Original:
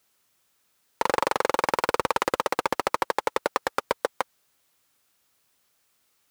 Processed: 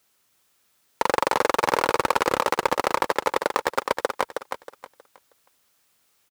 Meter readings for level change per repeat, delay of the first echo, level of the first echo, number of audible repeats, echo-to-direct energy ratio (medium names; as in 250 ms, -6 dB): -11.0 dB, 317 ms, -6.0 dB, 3, -5.5 dB